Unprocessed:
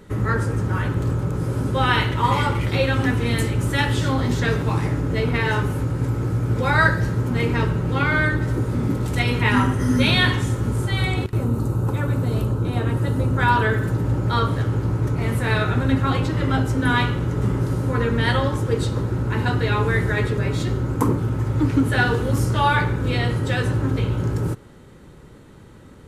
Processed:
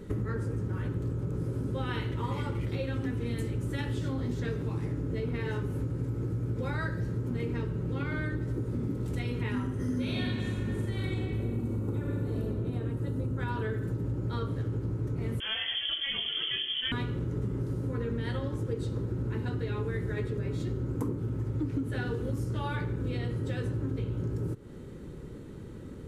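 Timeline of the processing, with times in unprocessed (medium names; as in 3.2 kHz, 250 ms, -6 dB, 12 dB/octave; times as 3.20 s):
9.78–12.41 s: reverb throw, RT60 2.2 s, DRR -2 dB
15.40–16.92 s: frequency inversion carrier 3.3 kHz
whole clip: resonant low shelf 560 Hz +6.5 dB, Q 1.5; compression, threshold -25 dBFS; trim -5 dB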